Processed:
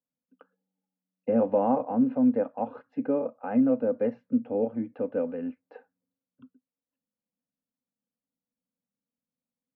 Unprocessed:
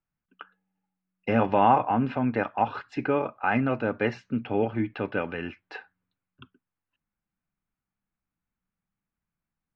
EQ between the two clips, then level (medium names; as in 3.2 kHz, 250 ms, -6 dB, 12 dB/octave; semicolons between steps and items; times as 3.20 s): two resonant band-passes 360 Hz, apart 0.93 oct; +6.5 dB